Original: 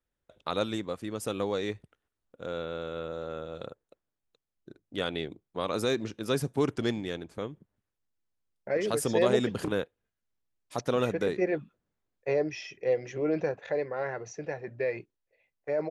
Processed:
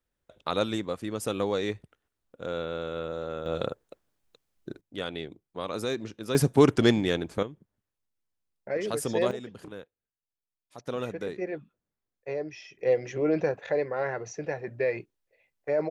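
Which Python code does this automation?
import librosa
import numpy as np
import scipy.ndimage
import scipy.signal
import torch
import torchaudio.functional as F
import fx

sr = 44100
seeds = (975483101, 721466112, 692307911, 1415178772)

y = fx.gain(x, sr, db=fx.steps((0.0, 2.5), (3.46, 10.0), (4.81, -2.5), (6.35, 8.5), (7.43, -1.5), (9.31, -12.5), (10.87, -5.5), (12.79, 3.0)))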